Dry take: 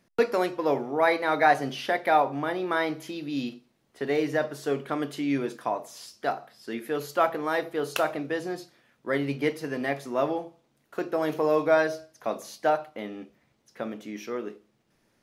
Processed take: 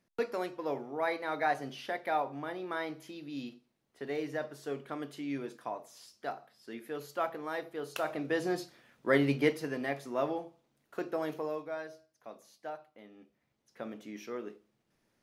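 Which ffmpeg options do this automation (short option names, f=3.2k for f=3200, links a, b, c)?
-af "volume=12dB,afade=t=in:st=7.98:d=0.57:silence=0.281838,afade=t=out:st=9.24:d=0.57:silence=0.446684,afade=t=out:st=11.09:d=0.56:silence=0.251189,afade=t=in:st=13.11:d=0.86:silence=0.281838"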